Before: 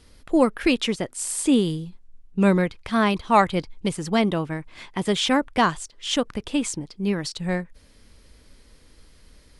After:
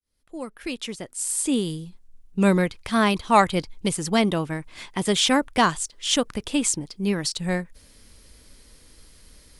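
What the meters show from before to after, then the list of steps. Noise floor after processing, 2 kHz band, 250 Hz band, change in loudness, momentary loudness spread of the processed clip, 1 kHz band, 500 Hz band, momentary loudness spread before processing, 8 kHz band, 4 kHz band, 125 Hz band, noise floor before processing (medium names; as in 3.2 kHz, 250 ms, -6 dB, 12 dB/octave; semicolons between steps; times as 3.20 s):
-55 dBFS, +0.5 dB, -1.5 dB, 0.0 dB, 14 LU, 0.0 dB, -1.5 dB, 11 LU, +4.5 dB, +2.0 dB, -0.5 dB, -54 dBFS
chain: fade-in on the opening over 2.64 s; treble shelf 5.7 kHz +11 dB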